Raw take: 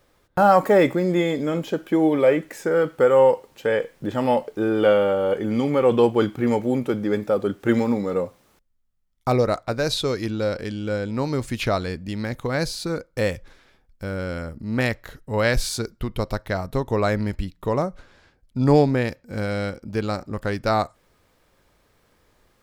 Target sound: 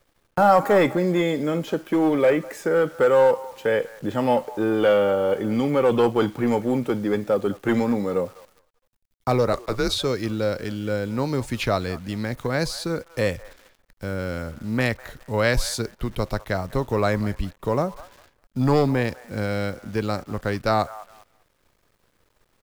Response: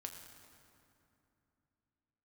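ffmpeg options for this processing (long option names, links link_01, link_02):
-filter_complex "[0:a]acrossover=split=110|640|1800[link_01][link_02][link_03][link_04];[link_02]asoftclip=type=hard:threshold=-17dB[link_05];[link_03]aecho=1:1:202|404|606:0.224|0.0537|0.0129[link_06];[link_01][link_05][link_06][link_04]amix=inputs=4:normalize=0,acrusher=bits=9:dc=4:mix=0:aa=0.000001,asettb=1/sr,asplit=3[link_07][link_08][link_09];[link_07]atrim=end=9.534[link_10];[link_08]atrim=start=9.53:end=9.98,asetpts=PTS-STARTPTS,afade=type=in:duration=0.004:curve=qsin,afade=type=out:start_time=0.446:duration=0.004:curve=qsin,afreqshift=-120[link_11];[link_09]atrim=start=9.976[link_12];[link_10][link_11]acrossfade=duration=0.004:curve1=hsin:curve2=qsin[link_13];[link_13][link_12]acrossfade=duration=0.004:curve1=qsin:curve2=hsin"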